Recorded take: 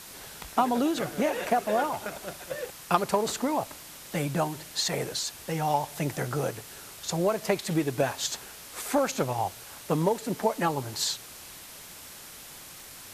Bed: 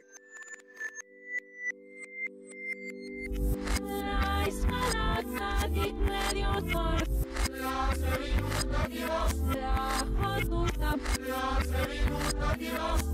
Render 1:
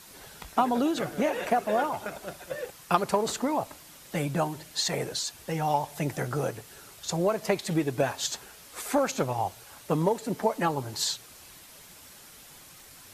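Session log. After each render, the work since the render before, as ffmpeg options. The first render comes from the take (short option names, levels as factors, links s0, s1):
-af "afftdn=nr=6:nf=-46"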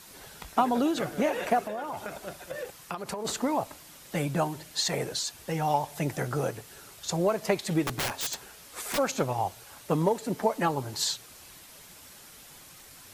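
-filter_complex "[0:a]asplit=3[s0][s1][s2];[s0]afade=t=out:st=1.65:d=0.02[s3];[s1]acompressor=threshold=0.0316:ratio=12:attack=3.2:release=140:knee=1:detection=peak,afade=t=in:st=1.65:d=0.02,afade=t=out:st=3.24:d=0.02[s4];[s2]afade=t=in:st=3.24:d=0.02[s5];[s3][s4][s5]amix=inputs=3:normalize=0,asplit=3[s6][s7][s8];[s6]afade=t=out:st=7.84:d=0.02[s9];[s7]aeval=exprs='(mod(15.8*val(0)+1,2)-1)/15.8':c=same,afade=t=in:st=7.84:d=0.02,afade=t=out:st=8.97:d=0.02[s10];[s8]afade=t=in:st=8.97:d=0.02[s11];[s9][s10][s11]amix=inputs=3:normalize=0"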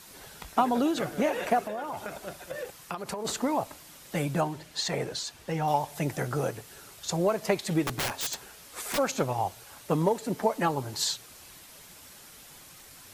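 -filter_complex "[0:a]asettb=1/sr,asplit=3[s0][s1][s2];[s0]atrim=end=4.414[s3];[s1]atrim=start=4.41:end=5.68,asetpts=PTS-STARTPTS,afade=t=in:d=0.004:c=qsin,afade=t=out:st=1.266:d=0.004:c=qsin,highshelf=f=7000:g=-9.5[s4];[s2]atrim=start=5.676[s5];[s3][s4]acrossfade=d=0.004:c1=hsin:c2=qsin[s6];[s6][s5]acrossfade=d=0.004:c1=qsin:c2=hsin"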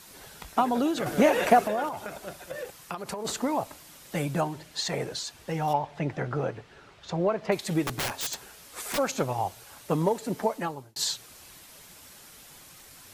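-filter_complex "[0:a]asettb=1/sr,asplit=3[s0][s1][s2];[s0]atrim=end=1.064[s3];[s1]atrim=start=1.06:end=1.89,asetpts=PTS-STARTPTS,afade=t=in:d=0.004:c=qsin,afade=t=out:st=0.826:d=0.004:c=qsin,acontrast=63[s4];[s2]atrim=start=1.886[s5];[s3][s4]acrossfade=d=0.004:c1=hsin:c2=qsin[s6];[s6][s5]acrossfade=d=0.004:c1=qsin:c2=hsin,asettb=1/sr,asplit=3[s7][s8][s9];[s7]atrim=end=5.734[s10];[s8]atrim=start=5.73:end=7.52,asetpts=PTS-STARTPTS,afade=t=in:d=0.004:c=qsin,afade=t=out:st=1.786:d=0.004:c=qsin,lowpass=2900[s11];[s9]atrim=start=7.516[s12];[s10][s11]acrossfade=d=0.004:c1=hsin:c2=qsin[s13];[s13][s12]acrossfade=d=0.004:c1=qsin:c2=hsin,asplit=2[s14][s15];[s14]atrim=end=10.96,asetpts=PTS-STARTPTS,afade=t=out:st=10.41:d=0.55[s16];[s15]atrim=start=10.96,asetpts=PTS-STARTPTS,afade=t=in:d=0.004:c=hsin[s17];[s16][s17]concat=n=2:v=0:a=1"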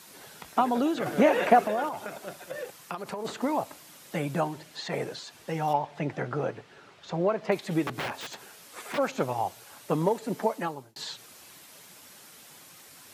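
-filter_complex "[0:a]highpass=140,acrossover=split=3400[s0][s1];[s1]acompressor=threshold=0.00501:ratio=4:attack=1:release=60[s2];[s0][s2]amix=inputs=2:normalize=0"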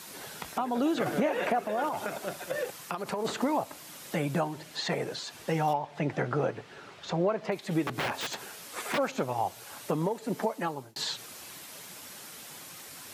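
-filter_complex "[0:a]asplit=2[s0][s1];[s1]acompressor=threshold=0.02:ratio=6,volume=0.794[s2];[s0][s2]amix=inputs=2:normalize=0,alimiter=limit=0.126:level=0:latency=1:release=462"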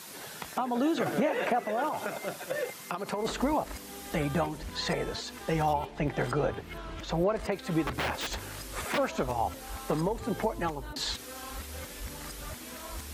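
-filter_complex "[1:a]volume=0.237[s0];[0:a][s0]amix=inputs=2:normalize=0"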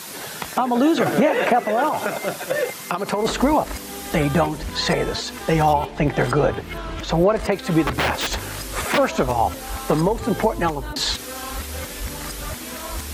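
-af "volume=3.35"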